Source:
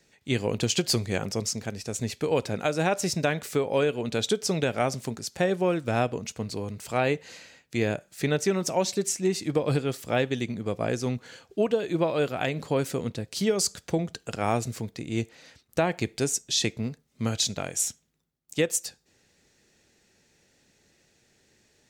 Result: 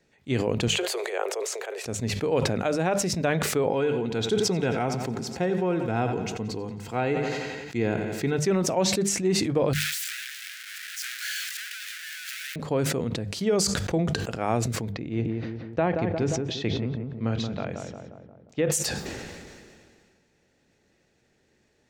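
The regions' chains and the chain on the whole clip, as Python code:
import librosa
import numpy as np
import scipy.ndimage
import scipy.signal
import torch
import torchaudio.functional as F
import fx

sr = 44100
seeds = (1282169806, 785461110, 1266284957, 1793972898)

y = fx.chain(x, sr, fx.steep_highpass(hz=380.0, slope=72),
    fx.peak_eq(hz=5200.0, db=-12.0, octaves=0.43),
    fx.sustainer(db_per_s=52.0), at=(0.68, 1.85))
y = fx.chain(y, sr, fx.peak_eq(hz=10000.0, db=-4.5, octaves=0.56),
    fx.notch_comb(f0_hz=590.0),
    fx.echo_feedback(ms=88, feedback_pct=57, wet_db=-13.5), at=(3.69, 8.39))
y = fx.chain(y, sr, fx.clip_1bit(),
    fx.steep_highpass(hz=1500.0, slope=72),
    fx.high_shelf(hz=4200.0, db=7.0), at=(9.73, 12.56))
y = fx.chain(y, sr, fx.air_absorb(metres=200.0),
    fx.echo_filtered(ms=177, feedback_pct=42, hz=1500.0, wet_db=-5.5), at=(14.92, 18.72))
y = fx.high_shelf(y, sr, hz=3200.0, db=-11.5)
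y = fx.hum_notches(y, sr, base_hz=50, count=4)
y = fx.sustainer(y, sr, db_per_s=28.0)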